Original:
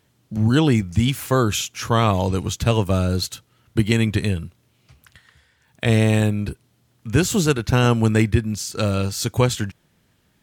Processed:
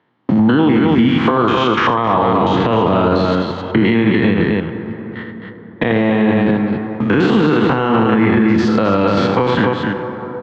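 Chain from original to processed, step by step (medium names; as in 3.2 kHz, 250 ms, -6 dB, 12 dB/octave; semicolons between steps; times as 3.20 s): spectrogram pixelated in time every 100 ms; gate -51 dBFS, range -34 dB; compression 1.5:1, threshold -47 dBFS, peak gain reduction 12 dB; cabinet simulation 290–2600 Hz, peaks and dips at 410 Hz -4 dB, 600 Hz -6 dB, 970 Hz +3 dB, 1.5 kHz -4 dB, 2.5 kHz -9 dB; loudspeakers at several distances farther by 27 m -8 dB, 90 m -7 dB; on a send at -13.5 dB: reverberation RT60 3.0 s, pre-delay 32 ms; on the sum: loudness maximiser +34 dB; three bands compressed up and down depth 40%; trim -3.5 dB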